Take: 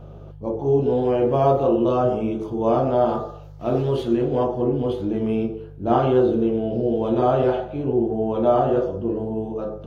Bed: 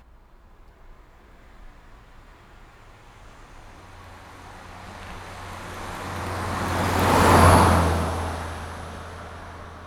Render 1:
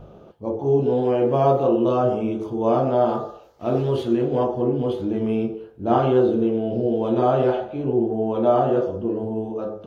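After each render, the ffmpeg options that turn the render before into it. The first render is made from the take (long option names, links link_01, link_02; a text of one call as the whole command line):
ffmpeg -i in.wav -af "bandreject=frequency=50:width_type=h:width=4,bandreject=frequency=100:width_type=h:width=4,bandreject=frequency=150:width_type=h:width=4" out.wav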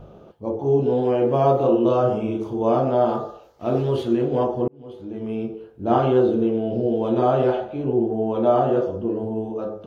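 ffmpeg -i in.wav -filter_complex "[0:a]asettb=1/sr,asplit=3[link_01][link_02][link_03];[link_01]atrim=end=1.564[link_04];[link_02]atrim=start=1.56:end=2.63,asetpts=PTS-STARTPTS,afade=type=in:duration=0.004:curve=qsin,afade=type=out:start_time=1.066:duration=0.004:curve=qsin,asplit=2[link_05][link_06];[link_06]adelay=38,volume=-6.5dB[link_07];[link_05][link_07]amix=inputs=2:normalize=0,atrim=end_sample=47187[link_08];[link_03]atrim=start=2.626[link_09];[link_04][link_08]acrossfade=duration=0.004:curve1=hsin:curve2=qsin[link_10];[link_10][link_09]acrossfade=duration=0.004:curve1=qsin:curve2=hsin,asplit=2[link_11][link_12];[link_11]atrim=end=4.68,asetpts=PTS-STARTPTS,afade=type=out:start_time=4.676:duration=0.004:curve=hsin[link_13];[link_12]atrim=start=4.68,asetpts=PTS-STARTPTS,afade=type=in:duration=1.16[link_14];[link_13][link_14]concat=n=2:v=0:a=1" out.wav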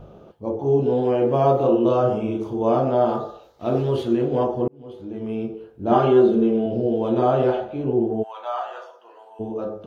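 ffmpeg -i in.wav -filter_complex "[0:a]asettb=1/sr,asplit=3[link_01][link_02][link_03];[link_01]atrim=end=3.204[link_04];[link_02]atrim=start=3.2:end=3.69,asetpts=PTS-STARTPTS,afade=type=in:duration=0.004:curve=qsin,afade=type=out:start_time=0.486:duration=0.004:curve=qsin,equalizer=frequency=3800:width=6.7:gain=8.5[link_05];[link_03]atrim=start=3.686[link_06];[link_04][link_05]acrossfade=duration=0.004:curve1=hsin:curve2=qsin[link_07];[link_07][link_06]acrossfade=duration=0.004:curve1=qsin:curve2=hsin,asettb=1/sr,asplit=3[link_08][link_09][link_10];[link_08]atrim=end=5.914[link_11];[link_09]atrim=start=5.91:end=6.66,asetpts=PTS-STARTPTS,afade=type=in:duration=0.004:curve=qsin,afade=type=out:start_time=0.746:duration=0.004:curve=qsin,aecho=1:1:5:0.65,atrim=end_sample=33075[link_12];[link_10]atrim=start=6.656[link_13];[link_11][link_12]acrossfade=duration=0.004:curve1=hsin:curve2=qsin[link_14];[link_14][link_13]acrossfade=duration=0.004:curve1=qsin:curve2=hsin,asplit=3[link_15][link_16][link_17];[link_15]afade=type=out:start_time=8.22:duration=0.02[link_18];[link_16]highpass=frequency=890:width=0.5412,highpass=frequency=890:width=1.3066,afade=type=in:start_time=8.22:duration=0.02,afade=type=out:start_time=9.39:duration=0.02[link_19];[link_17]afade=type=in:start_time=9.39:duration=0.02[link_20];[link_18][link_19][link_20]amix=inputs=3:normalize=0" out.wav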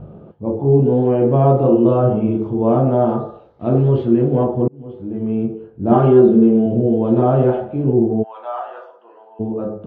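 ffmpeg -i in.wav -af "lowpass=2200,equalizer=frequency=150:width_type=o:width=2.3:gain=11" out.wav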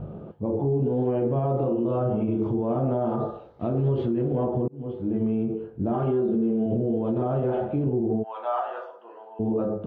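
ffmpeg -i in.wav -af "acompressor=threshold=-16dB:ratio=6,alimiter=limit=-17.5dB:level=0:latency=1:release=56" out.wav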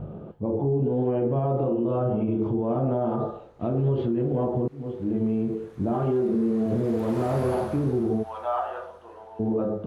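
ffmpeg -i in.wav -i bed.wav -filter_complex "[1:a]volume=-22dB[link_01];[0:a][link_01]amix=inputs=2:normalize=0" out.wav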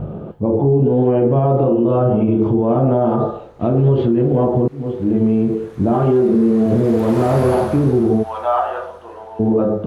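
ffmpeg -i in.wav -af "volume=10dB" out.wav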